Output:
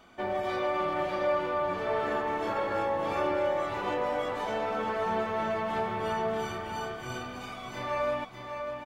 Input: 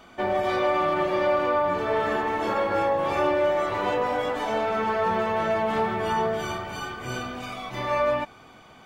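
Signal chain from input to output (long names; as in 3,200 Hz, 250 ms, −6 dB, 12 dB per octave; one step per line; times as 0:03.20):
single-tap delay 600 ms −6.5 dB
level −6.5 dB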